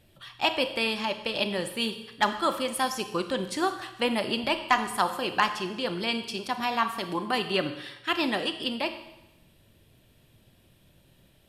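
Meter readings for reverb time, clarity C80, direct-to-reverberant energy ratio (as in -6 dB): 0.95 s, 12.0 dB, 8.5 dB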